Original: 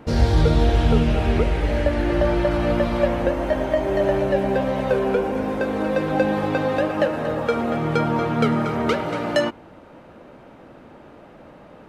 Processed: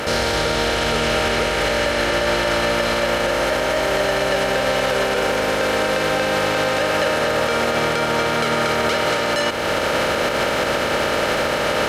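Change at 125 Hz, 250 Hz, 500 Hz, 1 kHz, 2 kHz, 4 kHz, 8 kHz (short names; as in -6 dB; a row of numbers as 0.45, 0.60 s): -6.5 dB, -3.0 dB, +2.5 dB, +6.0 dB, +10.5 dB, +13.5 dB, n/a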